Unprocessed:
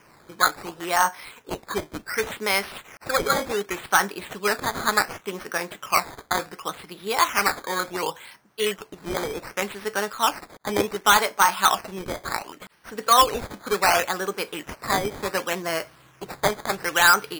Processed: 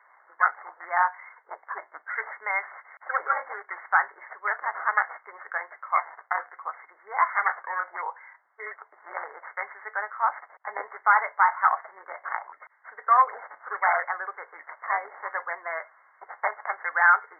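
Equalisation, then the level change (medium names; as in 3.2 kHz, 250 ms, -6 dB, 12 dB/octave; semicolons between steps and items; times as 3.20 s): high-pass 740 Hz 24 dB/octave; brick-wall FIR low-pass 2.2 kHz; -1.0 dB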